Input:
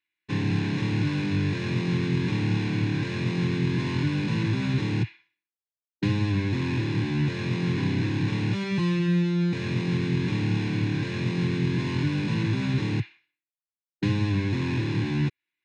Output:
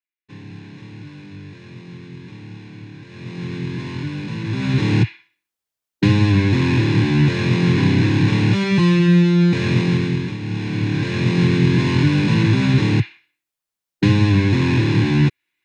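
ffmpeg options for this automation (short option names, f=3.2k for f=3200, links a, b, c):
-af "volume=22.5dB,afade=t=in:st=3.07:d=0.49:silence=0.298538,afade=t=in:st=4.43:d=0.51:silence=0.281838,afade=t=out:st=9.77:d=0.61:silence=0.237137,afade=t=in:st=10.38:d=1.02:silence=0.237137"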